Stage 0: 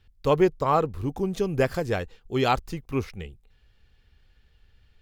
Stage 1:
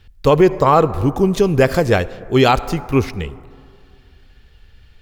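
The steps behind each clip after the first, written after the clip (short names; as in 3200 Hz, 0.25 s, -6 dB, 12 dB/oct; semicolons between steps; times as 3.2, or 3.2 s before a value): on a send at -18.5 dB: reverb RT60 2.4 s, pre-delay 53 ms; on the sum: maximiser +13.5 dB; gain -1.5 dB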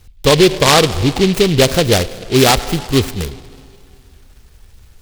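in parallel at -10 dB: hard clip -18.5 dBFS, distortion -4 dB; on the sum: noise-modulated delay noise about 3100 Hz, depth 0.14 ms; gain +1 dB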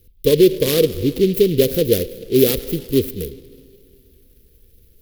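EQ curve 110 Hz 0 dB, 490 Hz +10 dB, 760 Hz -22 dB, 1900 Hz -7 dB, 3300 Hz -1 dB, 8100 Hz -5 dB, 12000 Hz +13 dB; gain -9 dB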